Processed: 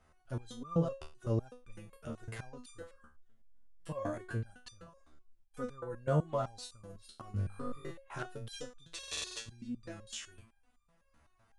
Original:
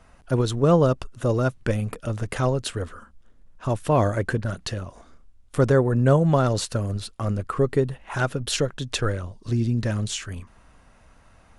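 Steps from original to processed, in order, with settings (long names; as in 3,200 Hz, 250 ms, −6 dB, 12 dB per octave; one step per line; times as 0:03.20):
0:07.31–0:07.91: flutter between parallel walls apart 3.5 metres, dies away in 1.1 s
buffer that repeats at 0:03.39/0:08.94, samples 2,048, times 9
step-sequenced resonator 7.9 Hz 76–1,200 Hz
level −4 dB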